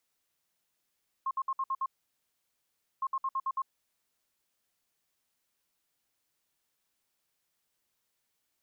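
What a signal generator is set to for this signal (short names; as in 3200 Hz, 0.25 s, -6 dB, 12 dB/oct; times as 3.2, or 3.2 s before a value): beep pattern sine 1070 Hz, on 0.05 s, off 0.06 s, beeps 6, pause 1.16 s, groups 2, -28 dBFS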